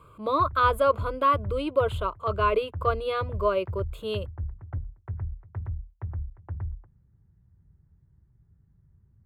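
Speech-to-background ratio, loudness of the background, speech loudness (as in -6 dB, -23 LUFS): 10.5 dB, -37.0 LUFS, -26.5 LUFS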